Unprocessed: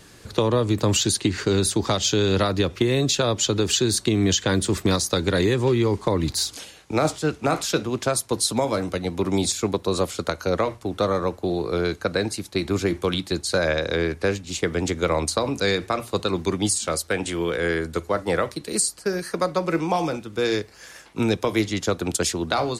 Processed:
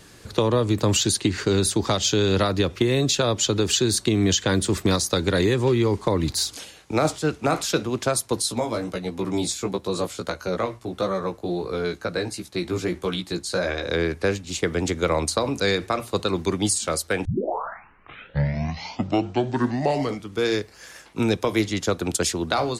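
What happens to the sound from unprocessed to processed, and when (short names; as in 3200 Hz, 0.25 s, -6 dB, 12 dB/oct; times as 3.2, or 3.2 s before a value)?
8.42–13.88 chorus 1.5 Hz, delay 15.5 ms, depth 2.1 ms
17.25 tape start 3.24 s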